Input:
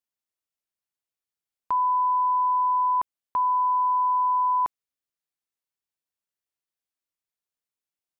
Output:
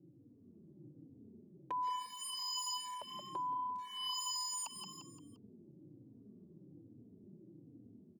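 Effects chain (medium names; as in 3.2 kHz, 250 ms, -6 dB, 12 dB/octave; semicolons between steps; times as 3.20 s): wah-wah 0.51 Hz 370–1100 Hz, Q 8; band noise 100–330 Hz -67 dBFS; level rider gain up to 5 dB; in parallel at +2 dB: peak limiter -29.5 dBFS, peak gain reduction 15.5 dB; on the sum: wavefolder -28.5 dBFS; bass shelf 84 Hz -8.5 dB; on a send: frequency-shifting echo 174 ms, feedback 42%, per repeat +31 Hz, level -11.5 dB; on the sum: compression 4:1, threshold -38 dBFS, peak gain reduction 7 dB; endless flanger 3.3 ms -1.2 Hz; trim +1.5 dB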